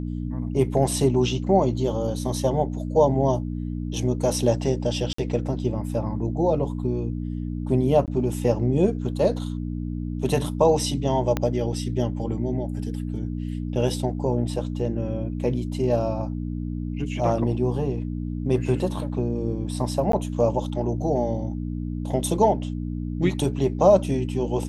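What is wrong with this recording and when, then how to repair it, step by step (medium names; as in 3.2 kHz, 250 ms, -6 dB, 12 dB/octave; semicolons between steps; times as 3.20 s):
hum 60 Hz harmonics 5 -29 dBFS
5.13–5.18 s: dropout 54 ms
8.06–8.08 s: dropout 18 ms
11.37 s: pop -10 dBFS
20.12–20.13 s: dropout 13 ms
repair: de-click; de-hum 60 Hz, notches 5; interpolate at 5.13 s, 54 ms; interpolate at 8.06 s, 18 ms; interpolate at 20.12 s, 13 ms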